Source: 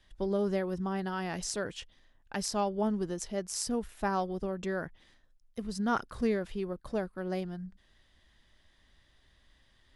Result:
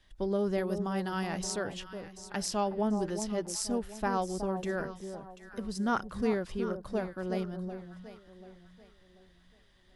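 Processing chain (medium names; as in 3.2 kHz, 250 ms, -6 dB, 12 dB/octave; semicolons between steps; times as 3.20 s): 0.58–1.27 s: treble shelf 4.7 kHz +9 dB; echo whose repeats swap between lows and highs 369 ms, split 1 kHz, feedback 57%, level -7.5 dB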